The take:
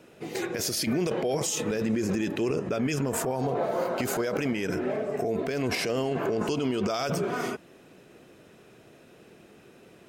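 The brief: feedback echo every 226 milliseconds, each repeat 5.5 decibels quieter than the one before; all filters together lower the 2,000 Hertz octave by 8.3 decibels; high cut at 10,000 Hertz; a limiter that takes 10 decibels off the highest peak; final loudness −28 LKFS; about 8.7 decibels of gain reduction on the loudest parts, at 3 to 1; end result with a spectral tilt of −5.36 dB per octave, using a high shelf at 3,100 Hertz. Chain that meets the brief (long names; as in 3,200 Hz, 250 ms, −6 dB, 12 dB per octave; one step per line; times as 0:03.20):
low-pass filter 10,000 Hz
parametric band 2,000 Hz −8.5 dB
high-shelf EQ 3,100 Hz −7.5 dB
downward compressor 3 to 1, threshold −36 dBFS
brickwall limiter −35 dBFS
repeating echo 226 ms, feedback 53%, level −5.5 dB
level +14 dB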